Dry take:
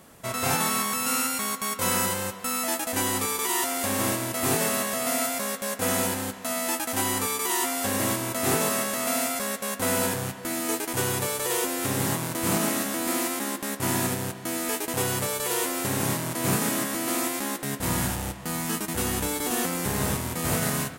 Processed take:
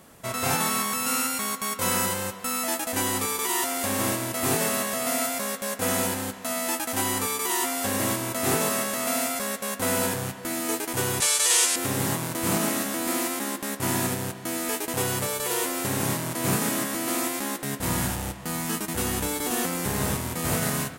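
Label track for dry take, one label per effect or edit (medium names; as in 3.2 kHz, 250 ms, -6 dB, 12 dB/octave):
11.200000	11.760000	frequency weighting ITU-R 468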